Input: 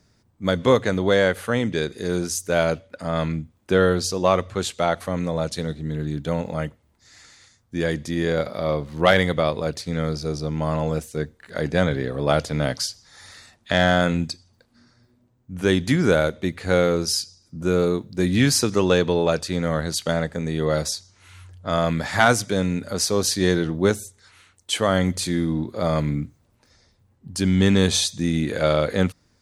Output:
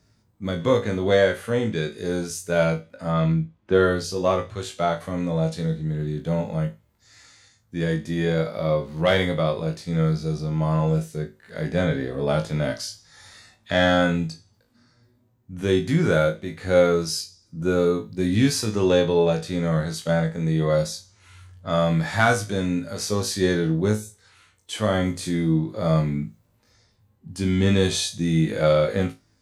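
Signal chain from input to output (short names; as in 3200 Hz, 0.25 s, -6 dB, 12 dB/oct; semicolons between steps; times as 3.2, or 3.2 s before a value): 3.12–3.96 low-pass opened by the level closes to 2900 Hz, open at -13 dBFS; harmonic-percussive split percussive -10 dB; flutter echo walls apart 3.2 m, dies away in 0.22 s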